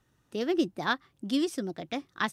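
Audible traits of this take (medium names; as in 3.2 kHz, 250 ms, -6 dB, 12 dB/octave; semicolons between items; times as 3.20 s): noise floor -71 dBFS; spectral tilt -3.0 dB/octave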